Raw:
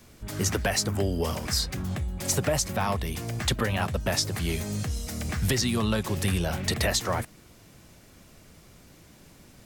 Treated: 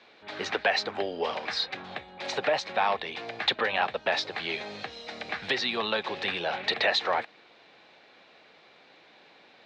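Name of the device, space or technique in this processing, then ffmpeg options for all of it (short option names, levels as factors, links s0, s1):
phone earpiece: -af "highpass=460,equalizer=f=470:t=q:w=4:g=4,equalizer=f=800:t=q:w=4:g=7,equalizer=f=1700:t=q:w=4:g=4,equalizer=f=2400:t=q:w=4:g=5,equalizer=f=3900:t=q:w=4:g=9,lowpass=f=3900:w=0.5412,lowpass=f=3900:w=1.3066"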